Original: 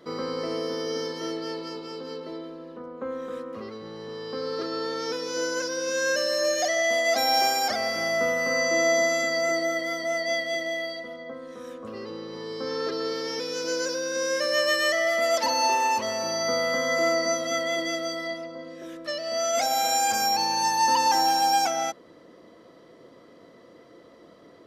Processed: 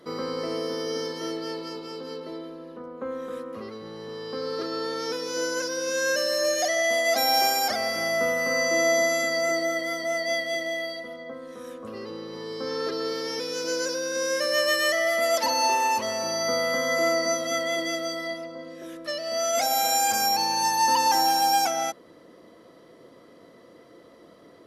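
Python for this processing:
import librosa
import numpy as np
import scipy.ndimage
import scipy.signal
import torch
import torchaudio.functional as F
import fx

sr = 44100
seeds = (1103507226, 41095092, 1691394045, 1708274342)

y = fx.peak_eq(x, sr, hz=11000.0, db=10.0, octaves=0.45)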